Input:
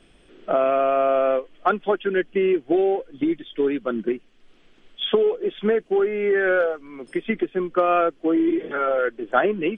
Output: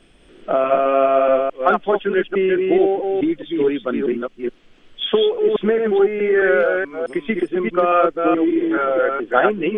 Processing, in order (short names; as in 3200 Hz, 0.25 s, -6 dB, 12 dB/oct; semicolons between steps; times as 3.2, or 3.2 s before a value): reverse delay 0.214 s, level -3 dB; gain +2.5 dB